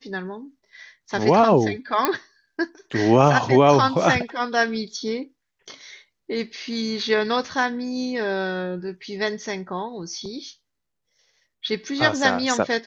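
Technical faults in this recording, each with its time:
2.05 pop -4 dBFS

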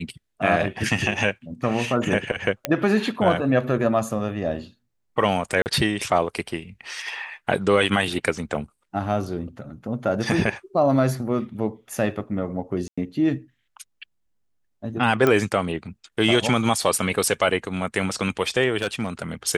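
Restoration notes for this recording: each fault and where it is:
2.65 pop -6 dBFS
5.62–5.66 gap 39 ms
12.88–12.97 gap 95 ms
15.27 pop -8 dBFS
18.82–19.22 clipped -18 dBFS

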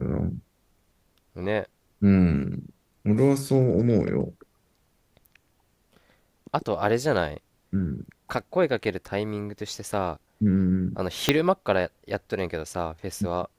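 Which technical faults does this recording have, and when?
11.29 pop -3 dBFS

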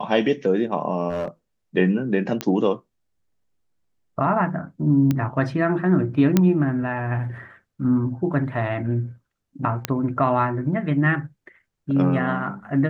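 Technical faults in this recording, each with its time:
1.09–1.28 clipped -21.5 dBFS
2.41 pop -9 dBFS
5.11 pop -10 dBFS
6.37 pop -4 dBFS
9.85 pop -6 dBFS

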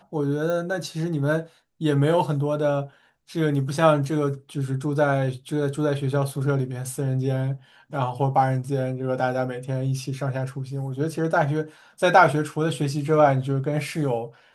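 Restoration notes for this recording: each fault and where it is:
0.5 pop -17 dBFS

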